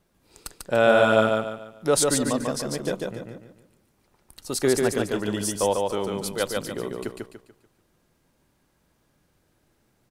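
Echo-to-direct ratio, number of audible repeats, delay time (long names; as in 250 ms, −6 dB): −2.5 dB, 4, 145 ms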